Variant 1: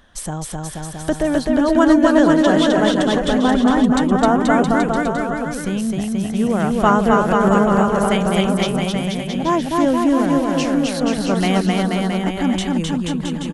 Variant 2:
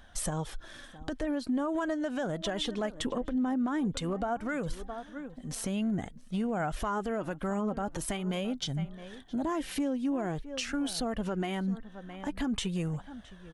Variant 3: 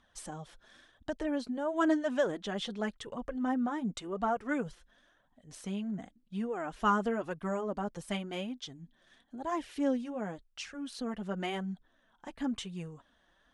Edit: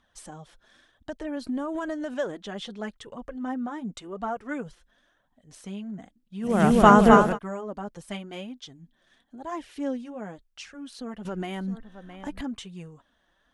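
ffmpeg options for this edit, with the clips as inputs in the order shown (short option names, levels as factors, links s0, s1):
-filter_complex "[1:a]asplit=2[s0][s1];[2:a]asplit=4[s2][s3][s4][s5];[s2]atrim=end=1.372[s6];[s0]atrim=start=1.368:end=2.142[s7];[s3]atrim=start=2.138:end=6.65[s8];[0:a]atrim=start=6.41:end=7.39[s9];[s4]atrim=start=7.15:end=11.252[s10];[s1]atrim=start=11.248:end=12.412[s11];[s5]atrim=start=12.408[s12];[s6][s7]acrossfade=d=0.004:c1=hsin:c2=hsin[s13];[s13][s8]acrossfade=d=0.004:c1=hsin:c2=hsin[s14];[s14][s9]acrossfade=d=0.24:c1=tri:c2=tri[s15];[s15][s10]acrossfade=d=0.24:c1=tri:c2=tri[s16];[s16][s11]acrossfade=d=0.004:c1=hsin:c2=hsin[s17];[s17][s12]acrossfade=d=0.004:c1=hsin:c2=hsin"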